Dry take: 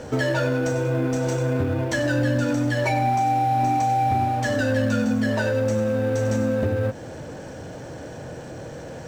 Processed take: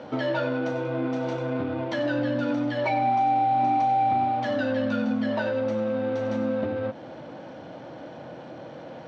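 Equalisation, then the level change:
loudspeaker in its box 230–3,700 Hz, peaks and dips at 430 Hz −10 dB, 1,700 Hz −8 dB, 2,600 Hz −4 dB
0.0 dB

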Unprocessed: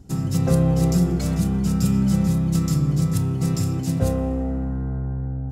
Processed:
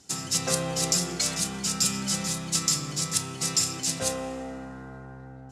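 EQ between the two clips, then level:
meter weighting curve ITU-R 468
0.0 dB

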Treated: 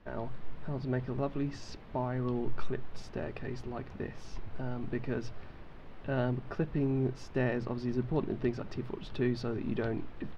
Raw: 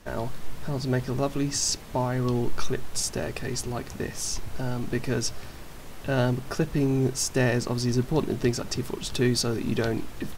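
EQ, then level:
high-frequency loss of the air 350 metres
mains-hum notches 60/120 Hz
−6.0 dB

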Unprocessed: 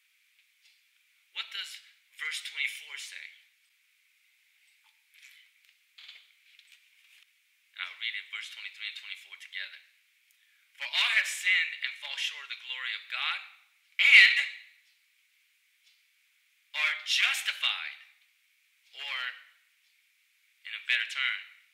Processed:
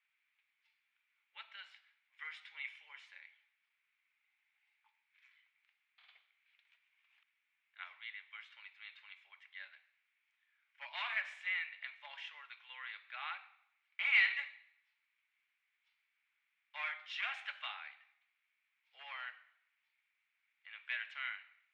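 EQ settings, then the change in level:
four-pole ladder band-pass 970 Hz, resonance 35%
+5.0 dB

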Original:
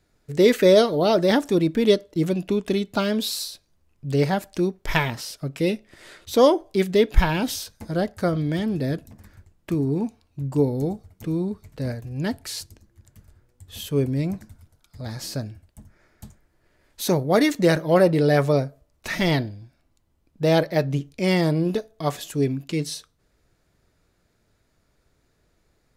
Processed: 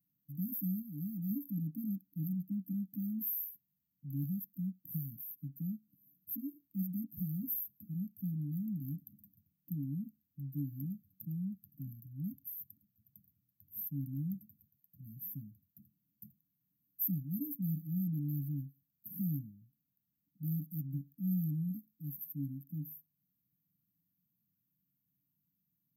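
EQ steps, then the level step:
high-pass filter 210 Hz 24 dB per octave
linear-phase brick-wall band-stop 280–12,000 Hz
phaser with its sweep stopped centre 590 Hz, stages 4
+5.0 dB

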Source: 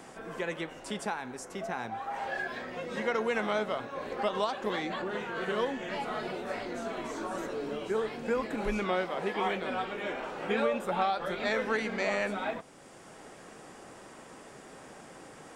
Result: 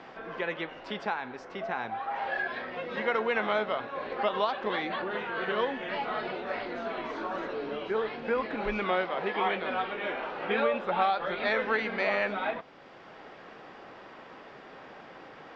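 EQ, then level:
low-pass filter 4,600 Hz 24 dB per octave
high-frequency loss of the air 120 metres
low-shelf EQ 390 Hz −9 dB
+5.0 dB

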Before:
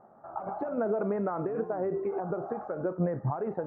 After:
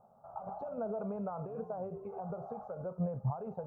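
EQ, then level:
low-shelf EQ 130 Hz −3.5 dB
parametric band 1,100 Hz −9 dB 3 octaves
phaser with its sweep stopped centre 780 Hz, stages 4
+2.0 dB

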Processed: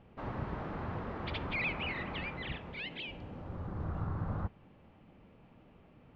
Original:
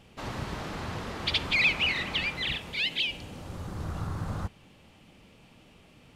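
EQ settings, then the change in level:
low-pass filter 1,500 Hz 12 dB per octave
−2.5 dB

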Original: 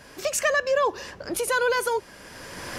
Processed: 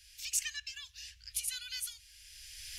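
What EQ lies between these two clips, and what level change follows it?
inverse Chebyshev band-stop filter 220–790 Hz, stop band 70 dB
−4.5 dB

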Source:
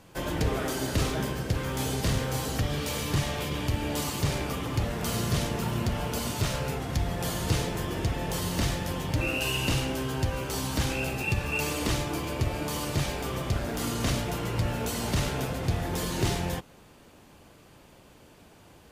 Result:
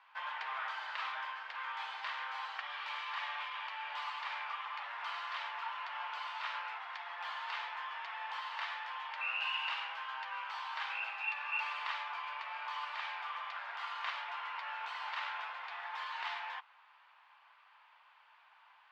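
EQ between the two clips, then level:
moving average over 4 samples
elliptic high-pass filter 930 Hz, stop band 80 dB
high-frequency loss of the air 410 metres
+2.0 dB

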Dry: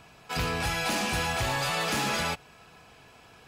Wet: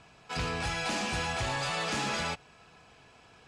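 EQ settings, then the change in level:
low-pass filter 8,900 Hz 24 dB per octave
−3.5 dB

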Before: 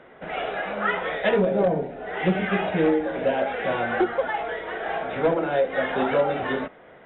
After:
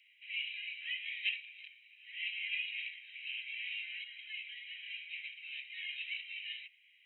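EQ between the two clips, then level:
Butterworth high-pass 2,300 Hz 72 dB per octave
Butterworth band-reject 3,500 Hz, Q 5.7
+1.5 dB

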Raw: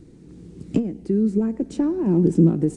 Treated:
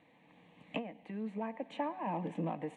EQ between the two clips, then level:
high-pass filter 870 Hz 12 dB per octave
high-frequency loss of the air 350 metres
phaser with its sweep stopped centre 1,400 Hz, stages 6
+9.0 dB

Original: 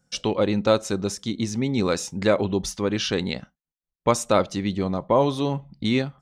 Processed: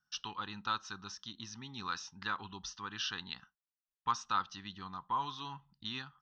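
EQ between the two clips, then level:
Chebyshev low-pass with heavy ripple 7,900 Hz, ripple 6 dB
low shelf with overshoot 650 Hz −11.5 dB, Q 1.5
phaser with its sweep stopped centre 2,200 Hz, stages 6
−4.5 dB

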